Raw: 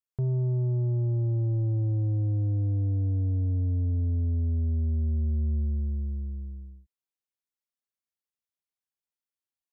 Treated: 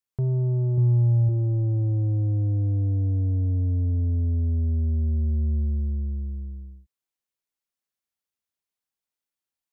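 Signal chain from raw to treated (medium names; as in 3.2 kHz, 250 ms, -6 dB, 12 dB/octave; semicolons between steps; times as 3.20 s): 0.77–1.29 s: comb 7.3 ms, depth 77%; trim +3 dB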